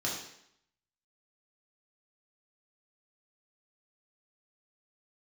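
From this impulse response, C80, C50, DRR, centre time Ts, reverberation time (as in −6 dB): 6.5 dB, 3.5 dB, −4.5 dB, 44 ms, 0.70 s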